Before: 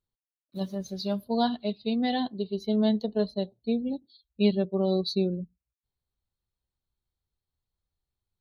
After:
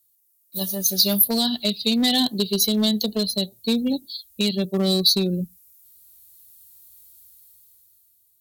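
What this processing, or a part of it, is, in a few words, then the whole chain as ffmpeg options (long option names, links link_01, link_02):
FM broadcast chain: -filter_complex "[0:a]highpass=frequency=55:poles=1,dynaudnorm=framelen=210:gausssize=11:maxgain=15dB,acrossover=split=310|2500[link_01][link_02][link_03];[link_01]acompressor=threshold=-16dB:ratio=4[link_04];[link_02]acompressor=threshold=-26dB:ratio=4[link_05];[link_03]acompressor=threshold=-28dB:ratio=4[link_06];[link_04][link_05][link_06]amix=inputs=3:normalize=0,aemphasis=mode=production:type=75fm,alimiter=limit=-13.5dB:level=0:latency=1:release=351,asoftclip=type=hard:threshold=-16.5dB,lowpass=frequency=15000:width=0.5412,lowpass=frequency=15000:width=1.3066,aemphasis=mode=production:type=75fm,volume=1.5dB"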